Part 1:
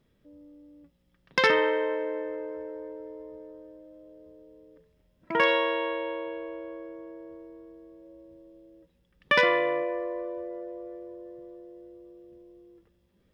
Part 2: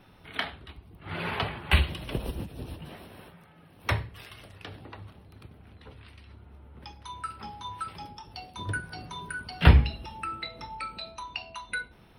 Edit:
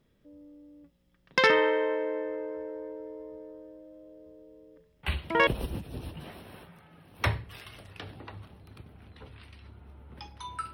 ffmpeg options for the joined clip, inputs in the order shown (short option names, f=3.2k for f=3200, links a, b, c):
-filter_complex "[1:a]asplit=2[a][b];[0:a]apad=whole_dur=10.73,atrim=end=10.73,atrim=end=5.472[c];[b]atrim=start=2.118:end=7.38[d];[a]atrim=start=1.68:end=2.12,asetpts=PTS-STARTPTS,volume=-9.5dB,afade=t=in:d=0.004:c=hsin,afade=t=out:st=0.436:d=0.004:c=hsin,adelay=5030[e];[c][d]acrossfade=d=0.004:c1=hsin:c2=hsin[f];[f][e]amix=inputs=2:normalize=0"